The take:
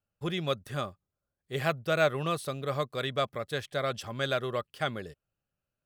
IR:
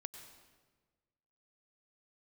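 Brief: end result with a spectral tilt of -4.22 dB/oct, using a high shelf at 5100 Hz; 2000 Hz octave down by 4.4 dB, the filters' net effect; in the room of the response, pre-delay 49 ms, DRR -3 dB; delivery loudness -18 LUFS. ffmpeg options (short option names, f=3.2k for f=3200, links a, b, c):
-filter_complex "[0:a]equalizer=f=2k:t=o:g=-7,highshelf=f=5.1k:g=3,asplit=2[a][b];[1:a]atrim=start_sample=2205,adelay=49[c];[b][c]afir=irnorm=-1:irlink=0,volume=6.5dB[d];[a][d]amix=inputs=2:normalize=0,volume=10.5dB"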